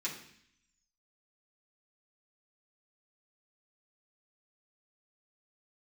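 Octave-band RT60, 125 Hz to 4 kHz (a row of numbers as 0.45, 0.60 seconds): 0.90, 0.85, 0.60, 0.65, 0.80, 0.85 seconds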